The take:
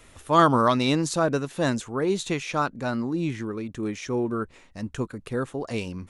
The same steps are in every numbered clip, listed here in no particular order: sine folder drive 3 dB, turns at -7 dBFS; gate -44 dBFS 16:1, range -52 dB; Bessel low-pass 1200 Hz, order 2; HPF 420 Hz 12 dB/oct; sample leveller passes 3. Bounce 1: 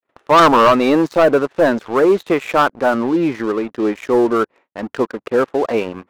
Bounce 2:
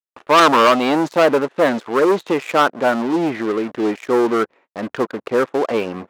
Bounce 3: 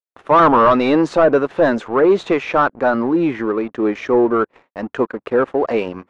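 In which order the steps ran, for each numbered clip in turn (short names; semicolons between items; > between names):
Bessel low-pass > sine folder > gate > HPF > sample leveller; Bessel low-pass > sample leveller > sine folder > HPF > gate; sine folder > HPF > sample leveller > gate > Bessel low-pass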